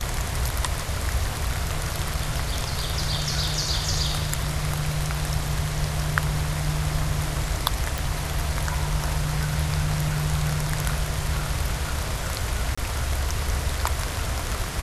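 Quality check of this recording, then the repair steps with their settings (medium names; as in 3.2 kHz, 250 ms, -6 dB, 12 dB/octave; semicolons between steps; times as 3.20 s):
7.98 s: pop
12.75–12.78 s: dropout 25 ms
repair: de-click; interpolate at 12.75 s, 25 ms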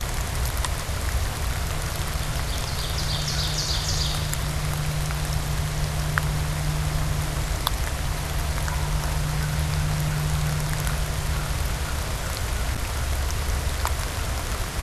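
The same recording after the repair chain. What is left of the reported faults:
nothing left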